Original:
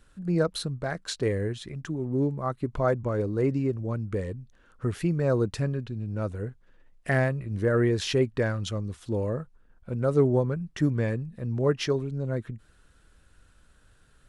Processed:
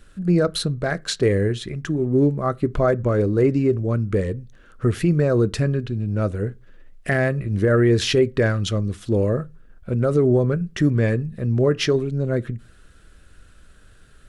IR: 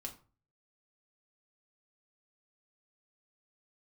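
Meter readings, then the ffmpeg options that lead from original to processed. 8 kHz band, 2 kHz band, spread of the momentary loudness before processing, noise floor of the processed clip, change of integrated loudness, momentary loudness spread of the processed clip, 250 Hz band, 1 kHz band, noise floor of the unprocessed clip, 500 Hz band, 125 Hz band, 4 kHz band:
+7.0 dB, +6.5 dB, 10 LU, −50 dBFS, +7.0 dB, 8 LU, +7.5 dB, +5.0 dB, −60 dBFS, +7.0 dB, +7.0 dB, +8.0 dB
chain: -filter_complex "[0:a]equalizer=frequency=910:width=3.8:gain=-8.5,alimiter=limit=-18dB:level=0:latency=1:release=50,asplit=2[link_01][link_02];[1:a]atrim=start_sample=2205,asetrate=66150,aresample=44100,lowpass=5000[link_03];[link_02][link_03]afir=irnorm=-1:irlink=0,volume=-6dB[link_04];[link_01][link_04]amix=inputs=2:normalize=0,volume=7.5dB"

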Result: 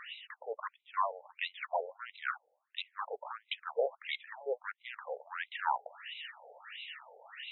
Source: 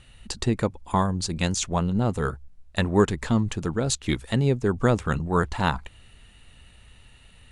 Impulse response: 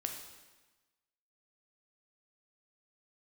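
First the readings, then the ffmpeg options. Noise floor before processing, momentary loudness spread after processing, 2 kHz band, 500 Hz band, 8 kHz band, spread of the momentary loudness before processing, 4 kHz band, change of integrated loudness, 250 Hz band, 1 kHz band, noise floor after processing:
−52 dBFS, 11 LU, −7.0 dB, −12.0 dB, below −40 dB, 7 LU, −8.5 dB, −14.5 dB, below −40 dB, −7.5 dB, −80 dBFS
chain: -af "areverse,acompressor=threshold=-37dB:ratio=6,areverse,aphaser=in_gain=1:out_gain=1:delay=4.7:decay=0.22:speed=0.31:type=triangular,aeval=exprs='0.0596*(cos(1*acos(clip(val(0)/0.0596,-1,1)))-cos(1*PI/2))+0.015*(cos(5*acos(clip(val(0)/0.0596,-1,1)))-cos(5*PI/2))':channel_layout=same,afftfilt=real='re*between(b*sr/1024,590*pow(2900/590,0.5+0.5*sin(2*PI*1.5*pts/sr))/1.41,590*pow(2900/590,0.5+0.5*sin(2*PI*1.5*pts/sr))*1.41)':imag='im*between(b*sr/1024,590*pow(2900/590,0.5+0.5*sin(2*PI*1.5*pts/sr))/1.41,590*pow(2900/590,0.5+0.5*sin(2*PI*1.5*pts/sr))*1.41)':win_size=1024:overlap=0.75,volume=8dB"

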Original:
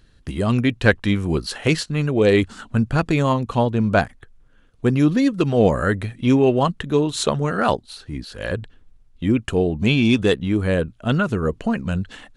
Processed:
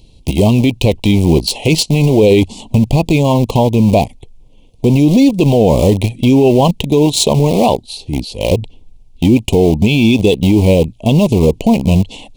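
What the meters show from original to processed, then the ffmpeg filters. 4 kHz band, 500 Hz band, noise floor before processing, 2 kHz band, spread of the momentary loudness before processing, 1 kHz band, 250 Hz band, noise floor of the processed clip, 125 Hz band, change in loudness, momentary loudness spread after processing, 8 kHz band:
+9.5 dB, +8.0 dB, −53 dBFS, 0.0 dB, 10 LU, +5.5 dB, +8.5 dB, −43 dBFS, +9.5 dB, +8.0 dB, 7 LU, +12.0 dB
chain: -filter_complex "[0:a]asplit=2[link_01][link_02];[link_02]aeval=exprs='val(0)*gte(abs(val(0)),0.0794)':channel_layout=same,volume=-4dB[link_03];[link_01][link_03]amix=inputs=2:normalize=0,asuperstop=centerf=1500:order=8:qfactor=1.1,alimiter=level_in=11.5dB:limit=-1dB:release=50:level=0:latency=1,volume=-1dB"

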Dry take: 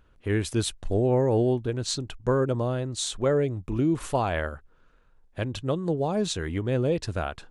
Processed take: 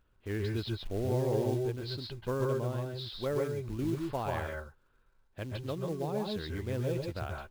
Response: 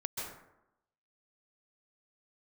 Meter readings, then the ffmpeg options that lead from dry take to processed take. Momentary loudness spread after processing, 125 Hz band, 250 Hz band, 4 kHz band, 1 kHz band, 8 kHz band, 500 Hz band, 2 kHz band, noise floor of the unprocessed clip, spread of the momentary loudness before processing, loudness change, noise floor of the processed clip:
9 LU, −6.5 dB, −8.5 dB, −8.5 dB, −8.0 dB, −18.0 dB, −7.5 dB, −7.5 dB, −59 dBFS, 8 LU, −8.0 dB, −69 dBFS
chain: -filter_complex "[0:a]aresample=11025,aresample=44100,acrusher=bits=5:mode=log:mix=0:aa=0.000001[link_01];[1:a]atrim=start_sample=2205,atrim=end_sample=6615[link_02];[link_01][link_02]afir=irnorm=-1:irlink=0,volume=-8dB"

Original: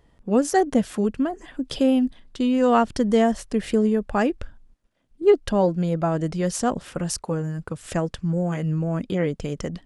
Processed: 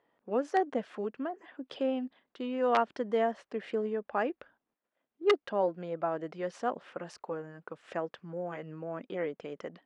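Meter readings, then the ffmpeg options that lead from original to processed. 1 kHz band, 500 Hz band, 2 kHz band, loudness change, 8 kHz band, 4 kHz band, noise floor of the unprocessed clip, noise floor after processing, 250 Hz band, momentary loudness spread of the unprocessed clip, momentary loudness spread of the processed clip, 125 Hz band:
−7.0 dB, −8.5 dB, −6.5 dB, −10.5 dB, below −20 dB, −9.5 dB, −60 dBFS, below −85 dBFS, −16.0 dB, 9 LU, 13 LU, −22.0 dB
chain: -af "aeval=exprs='(mod(2.37*val(0)+1,2)-1)/2.37':channel_layout=same,highpass=410,lowpass=2400,volume=-6.5dB"

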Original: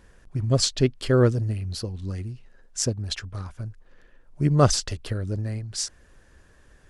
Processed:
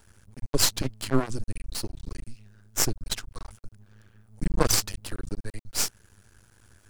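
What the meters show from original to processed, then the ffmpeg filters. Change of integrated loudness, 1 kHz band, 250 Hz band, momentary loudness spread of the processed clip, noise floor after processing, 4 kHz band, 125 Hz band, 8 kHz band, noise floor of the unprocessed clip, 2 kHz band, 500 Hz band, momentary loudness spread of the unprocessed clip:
−3.5 dB, −3.5 dB, −6.0 dB, 20 LU, −62 dBFS, −0.5 dB, −11.0 dB, +2.0 dB, −56 dBFS, +0.5 dB, −8.0 dB, 17 LU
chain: -af "aemphasis=mode=production:type=50fm,afreqshift=-120,aeval=exprs='max(val(0),0)':channel_layout=same"

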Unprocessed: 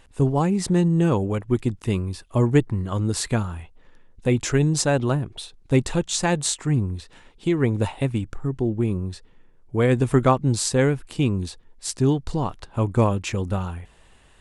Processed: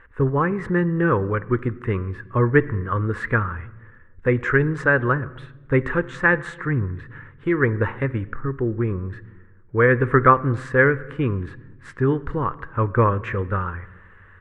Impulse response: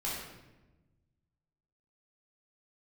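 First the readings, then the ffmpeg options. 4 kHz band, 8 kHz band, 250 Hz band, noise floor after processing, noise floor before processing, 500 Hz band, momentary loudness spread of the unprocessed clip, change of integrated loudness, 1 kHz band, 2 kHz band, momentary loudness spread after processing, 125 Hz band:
below −15 dB, below −25 dB, −1.5 dB, −48 dBFS, −53 dBFS, +2.5 dB, 11 LU, +1.5 dB, +5.5 dB, +11.5 dB, 12 LU, −0.5 dB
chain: -filter_complex "[0:a]firequalizer=gain_entry='entry(120,0);entry(180,-5);entry(490,4);entry(710,-10);entry(1100,9);entry(1700,14);entry(2500,-5);entry(4500,-25);entry(13000,-30)':delay=0.05:min_phase=1,asplit=2[link_01][link_02];[1:a]atrim=start_sample=2205,lowpass=4400[link_03];[link_02][link_03]afir=irnorm=-1:irlink=0,volume=-19.5dB[link_04];[link_01][link_04]amix=inputs=2:normalize=0"

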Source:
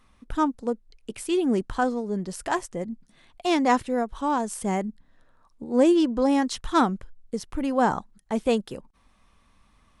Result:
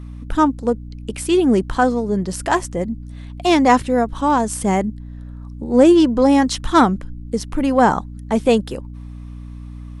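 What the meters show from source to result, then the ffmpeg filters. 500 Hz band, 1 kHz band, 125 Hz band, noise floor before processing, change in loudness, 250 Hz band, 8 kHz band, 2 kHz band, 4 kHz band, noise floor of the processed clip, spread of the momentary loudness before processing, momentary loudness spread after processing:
+8.0 dB, +8.0 dB, +11.5 dB, −62 dBFS, +8.0 dB, +8.0 dB, +8.0 dB, +8.0 dB, +8.0 dB, −33 dBFS, 15 LU, 22 LU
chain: -af "aeval=exprs='val(0)+0.01*(sin(2*PI*60*n/s)+sin(2*PI*2*60*n/s)/2+sin(2*PI*3*60*n/s)/3+sin(2*PI*4*60*n/s)/4+sin(2*PI*5*60*n/s)/5)':channel_layout=same,acontrast=50,volume=2.5dB"

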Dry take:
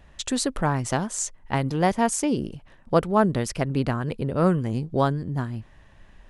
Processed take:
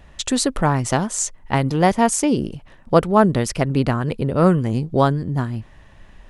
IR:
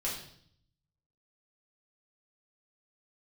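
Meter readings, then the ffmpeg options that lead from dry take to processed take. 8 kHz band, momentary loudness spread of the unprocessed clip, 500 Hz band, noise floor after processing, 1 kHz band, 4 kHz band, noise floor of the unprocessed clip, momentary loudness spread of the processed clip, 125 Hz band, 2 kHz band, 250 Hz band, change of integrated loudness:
+5.5 dB, 8 LU, +5.5 dB, −47 dBFS, +5.5 dB, +5.5 dB, −53 dBFS, 8 LU, +5.5 dB, +5.0 dB, +5.5 dB, +5.5 dB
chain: -af "bandreject=frequency=1600:width=27,volume=5.5dB"

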